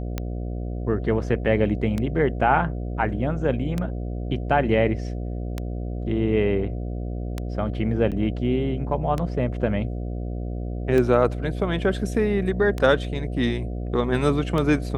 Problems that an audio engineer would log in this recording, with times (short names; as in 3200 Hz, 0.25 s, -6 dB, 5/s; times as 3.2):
buzz 60 Hz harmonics 12 -29 dBFS
tick 33 1/3 rpm -13 dBFS
8.11–8.12 gap 7.8 ms